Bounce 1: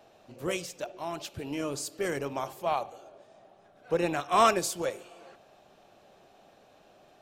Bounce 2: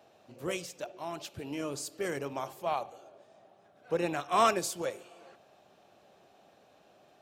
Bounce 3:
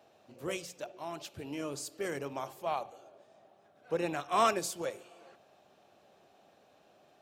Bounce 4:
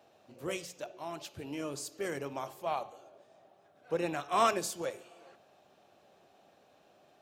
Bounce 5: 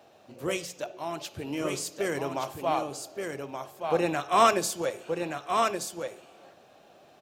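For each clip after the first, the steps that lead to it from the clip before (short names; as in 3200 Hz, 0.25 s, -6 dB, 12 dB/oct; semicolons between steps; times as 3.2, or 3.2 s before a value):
HPF 70 Hz; gain -3 dB
notches 60/120/180 Hz; gain -2 dB
de-hum 214.2 Hz, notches 34
echo 1.175 s -5 dB; gain +6.5 dB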